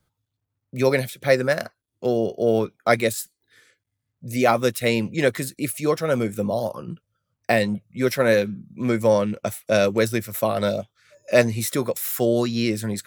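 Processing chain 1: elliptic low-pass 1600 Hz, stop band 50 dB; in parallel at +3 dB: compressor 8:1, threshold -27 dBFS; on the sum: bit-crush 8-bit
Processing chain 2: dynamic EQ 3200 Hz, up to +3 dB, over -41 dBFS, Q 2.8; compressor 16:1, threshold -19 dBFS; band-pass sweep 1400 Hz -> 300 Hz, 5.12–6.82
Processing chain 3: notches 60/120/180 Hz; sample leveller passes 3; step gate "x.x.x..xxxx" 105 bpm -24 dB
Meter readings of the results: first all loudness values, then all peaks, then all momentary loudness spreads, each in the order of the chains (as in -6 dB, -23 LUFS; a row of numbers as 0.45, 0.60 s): -20.0, -34.5, -15.0 LUFS; -3.0, -16.5, -2.0 dBFS; 9, 13, 12 LU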